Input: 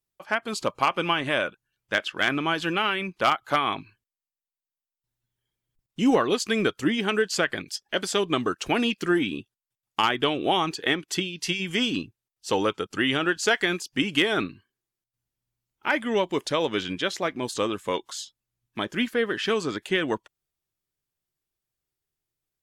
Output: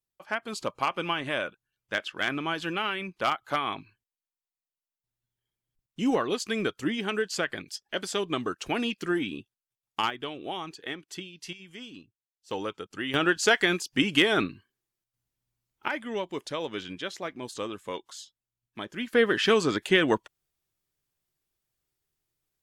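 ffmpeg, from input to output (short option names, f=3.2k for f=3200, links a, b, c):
-af "asetnsamples=n=441:p=0,asendcmd='10.1 volume volume -12dB;11.53 volume volume -18.5dB;12.51 volume volume -9dB;13.14 volume volume 0.5dB;15.88 volume volume -8dB;19.13 volume volume 3dB',volume=-5dB"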